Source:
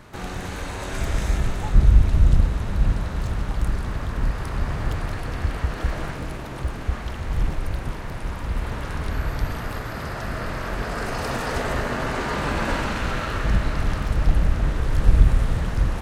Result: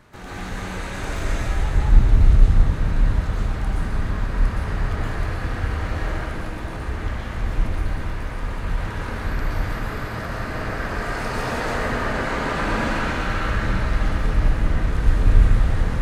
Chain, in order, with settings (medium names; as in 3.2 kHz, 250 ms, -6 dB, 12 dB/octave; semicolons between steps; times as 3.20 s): peaking EQ 1.7 kHz +2 dB; reverberation RT60 1.3 s, pre-delay 113 ms, DRR -7 dB; loudspeaker Doppler distortion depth 0.21 ms; trim -6.5 dB